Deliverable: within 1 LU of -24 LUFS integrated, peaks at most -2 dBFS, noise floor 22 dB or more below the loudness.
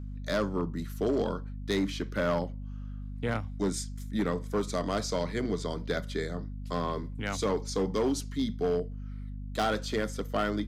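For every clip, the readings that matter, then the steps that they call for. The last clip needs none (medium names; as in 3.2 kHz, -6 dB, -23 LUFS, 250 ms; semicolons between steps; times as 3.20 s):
clipped samples 1.6%; clipping level -22.0 dBFS; hum 50 Hz; highest harmonic 250 Hz; hum level -36 dBFS; loudness -32.0 LUFS; peak level -22.0 dBFS; loudness target -24.0 LUFS
-> clip repair -22 dBFS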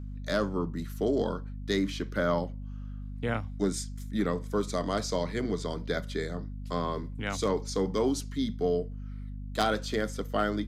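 clipped samples 0.0%; hum 50 Hz; highest harmonic 250 Hz; hum level -36 dBFS
-> de-hum 50 Hz, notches 5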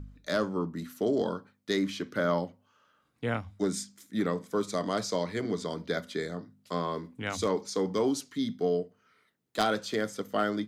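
hum not found; loudness -31.5 LUFS; peak level -12.5 dBFS; loudness target -24.0 LUFS
-> trim +7.5 dB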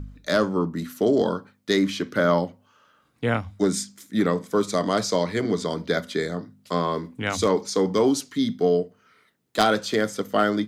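loudness -24.0 LUFS; peak level -5.0 dBFS; noise floor -64 dBFS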